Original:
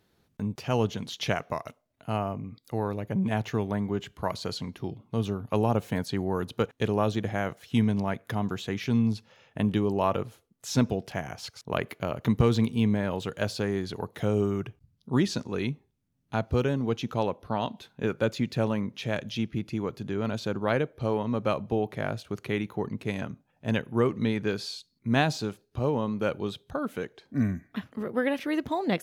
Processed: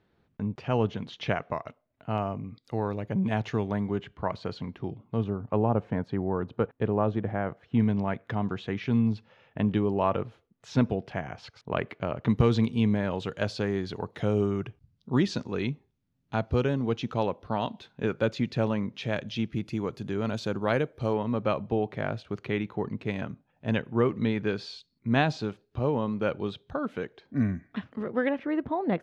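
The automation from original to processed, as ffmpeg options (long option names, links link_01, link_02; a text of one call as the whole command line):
ffmpeg -i in.wav -af "asetnsamples=nb_out_samples=441:pad=0,asendcmd='2.18 lowpass f 5100;3.98 lowpass f 2500;5.24 lowpass f 1500;7.8 lowpass f 2900;12.29 lowpass f 5100;19.51 lowpass f 9100;21.13 lowpass f 3800;28.29 lowpass f 1600',lowpass=2700" out.wav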